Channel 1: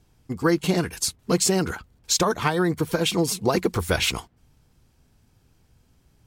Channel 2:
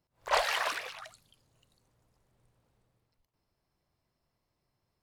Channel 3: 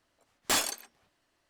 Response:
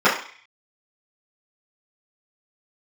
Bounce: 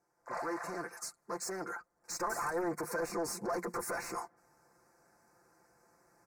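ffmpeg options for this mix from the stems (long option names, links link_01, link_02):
-filter_complex "[0:a]highpass=46,asoftclip=type=hard:threshold=-20.5dB,bass=frequency=250:gain=-13,treble=frequency=4000:gain=-1,volume=-5.5dB,afade=type=in:start_time=1.95:duration=0.26:silence=0.251189,asplit=2[link_01][link_02];[1:a]volume=-19dB[link_03];[2:a]adelay=1800,volume=-17.5dB[link_04];[link_02]apad=whole_len=221790[link_05];[link_03][link_05]sidechaincompress=threshold=-44dB:ratio=8:attack=16:release=138[link_06];[link_01][link_06]amix=inputs=2:normalize=0,asplit=2[link_07][link_08];[link_08]highpass=frequency=720:poles=1,volume=18dB,asoftclip=type=tanh:threshold=-21.5dB[link_09];[link_07][link_09]amix=inputs=2:normalize=0,lowpass=frequency=2900:poles=1,volume=-6dB,alimiter=level_in=7dB:limit=-24dB:level=0:latency=1:release=22,volume=-7dB,volume=0dB[link_10];[link_04][link_10]amix=inputs=2:normalize=0,asuperstop=centerf=3200:order=4:qfactor=0.79,aecho=1:1:5.8:0.65"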